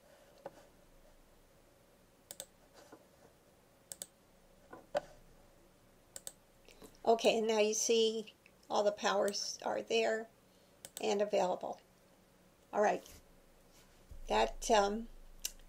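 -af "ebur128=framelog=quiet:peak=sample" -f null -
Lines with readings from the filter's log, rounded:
Integrated loudness:
  I:         -34.4 LUFS
  Threshold: -48.1 LUFS
Loudness range:
  LRA:        20.5 LU
  Threshold: -57.9 LUFS
  LRA low:   -54.3 LUFS
  LRA high:  -33.8 LUFS
Sample peak:
  Peak:      -16.2 dBFS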